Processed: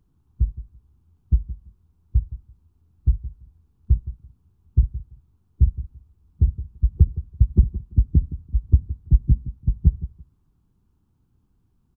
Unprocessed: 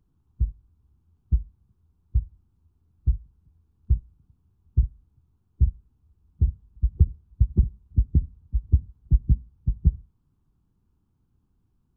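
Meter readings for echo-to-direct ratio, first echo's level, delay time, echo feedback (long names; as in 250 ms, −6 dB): −14.5 dB, −14.5 dB, 168 ms, 18%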